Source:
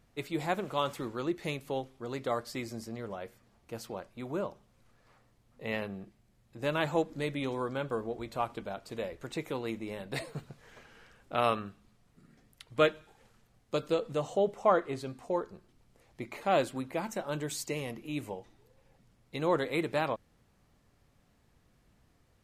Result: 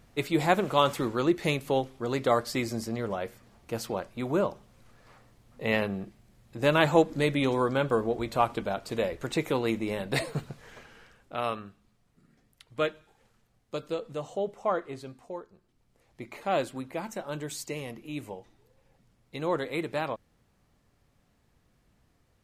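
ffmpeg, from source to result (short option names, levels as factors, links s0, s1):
-af "volume=7.5,afade=t=out:st=10.4:d=0.95:silence=0.281838,afade=t=out:st=15.06:d=0.42:silence=0.446684,afade=t=in:st=15.48:d=0.84:silence=0.334965"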